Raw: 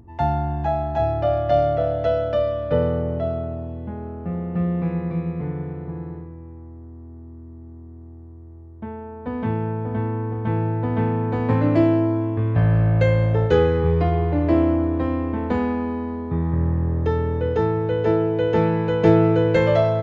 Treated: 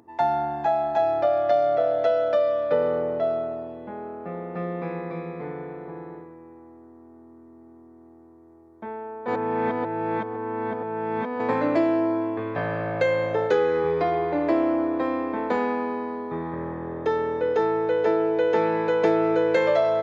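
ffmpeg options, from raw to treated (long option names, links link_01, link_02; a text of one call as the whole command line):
ffmpeg -i in.wav -filter_complex "[0:a]asplit=3[link_01][link_02][link_03];[link_01]atrim=end=9.282[link_04];[link_02]atrim=start=9.278:end=11.402,asetpts=PTS-STARTPTS,areverse[link_05];[link_03]atrim=start=11.398[link_06];[link_04][link_05]acrossfade=duration=0.004:curve1=hsin:curve2=hsin[link_07];[link_07][link_06]acrossfade=duration=0.004:curve1=hsin:curve2=hsin,highpass=400,bandreject=frequency=2900:width=7.9,acompressor=threshold=-21dB:ratio=3,volume=3dB" out.wav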